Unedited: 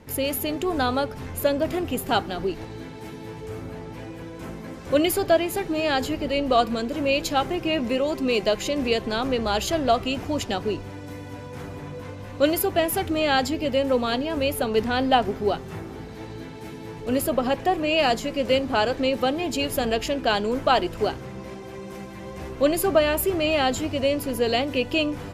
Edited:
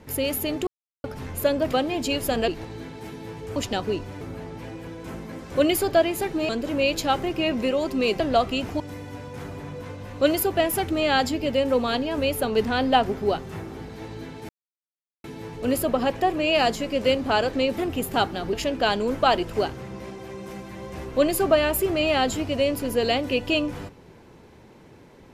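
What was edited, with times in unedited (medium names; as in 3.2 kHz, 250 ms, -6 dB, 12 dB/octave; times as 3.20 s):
0.67–1.04 s: mute
1.73–2.48 s: swap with 19.22–19.97 s
5.84–6.76 s: delete
8.47–9.74 s: delete
10.34–10.99 s: move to 3.56 s
16.68 s: insert silence 0.75 s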